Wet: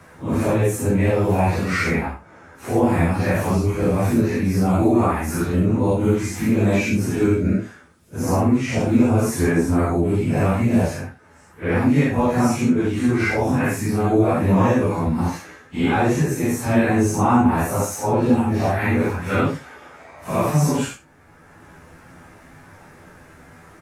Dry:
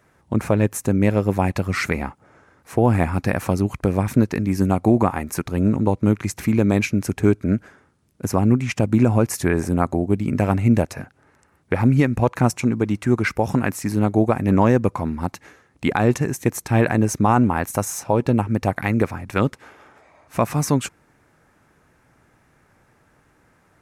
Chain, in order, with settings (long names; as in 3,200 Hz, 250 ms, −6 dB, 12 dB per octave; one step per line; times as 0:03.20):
random phases in long frames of 200 ms
on a send: ambience of single reflections 12 ms −5.5 dB, 74 ms −16 dB
on the sum: multiband upward and downward compressor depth 40%